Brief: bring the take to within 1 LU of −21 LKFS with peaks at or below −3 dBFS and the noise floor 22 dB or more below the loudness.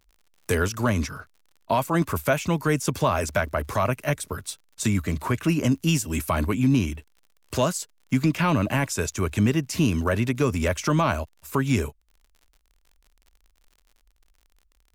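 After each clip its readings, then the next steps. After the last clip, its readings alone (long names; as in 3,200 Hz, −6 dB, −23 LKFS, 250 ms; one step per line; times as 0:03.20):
crackle rate 45 per second; integrated loudness −24.5 LKFS; sample peak −11.5 dBFS; target loudness −21.0 LKFS
→ click removal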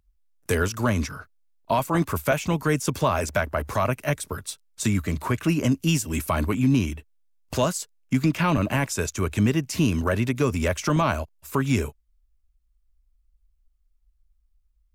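crackle rate 0.13 per second; integrated loudness −25.0 LKFS; sample peak −11.0 dBFS; target loudness −21.0 LKFS
→ level +4 dB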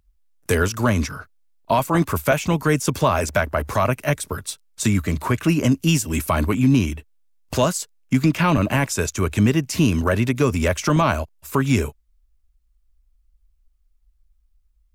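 integrated loudness −21.0 LKFS; sample peak −7.0 dBFS; background noise floor −63 dBFS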